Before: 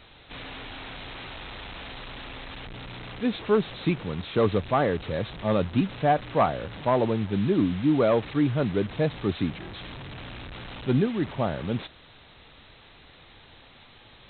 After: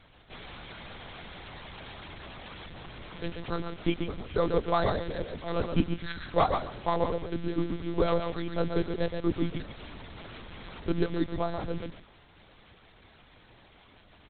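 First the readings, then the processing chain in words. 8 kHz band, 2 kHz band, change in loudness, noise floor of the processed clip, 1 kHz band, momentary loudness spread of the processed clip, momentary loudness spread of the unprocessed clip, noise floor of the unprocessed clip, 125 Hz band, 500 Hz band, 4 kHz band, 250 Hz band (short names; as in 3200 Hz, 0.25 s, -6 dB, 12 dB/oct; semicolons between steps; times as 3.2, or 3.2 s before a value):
n/a, -4.5 dB, -5.0 dB, -58 dBFS, -4.0 dB, 17 LU, 16 LU, -53 dBFS, -6.0 dB, -5.0 dB, -4.0 dB, -6.0 dB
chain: spectral delete 5.95–6.26, 400–1100 Hz; high shelf 2200 Hz -4.5 dB; harmonic-percussive split harmonic -13 dB; on a send: feedback echo 0.131 s, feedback 18%, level -6 dB; on the sum: careless resampling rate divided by 8×, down filtered, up zero stuff; monotone LPC vocoder at 8 kHz 170 Hz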